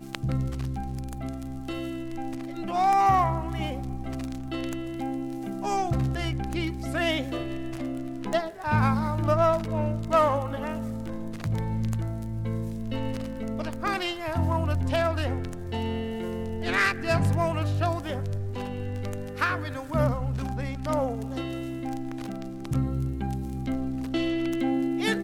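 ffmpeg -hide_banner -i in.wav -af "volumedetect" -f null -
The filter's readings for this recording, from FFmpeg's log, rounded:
mean_volume: -27.7 dB
max_volume: -9.6 dB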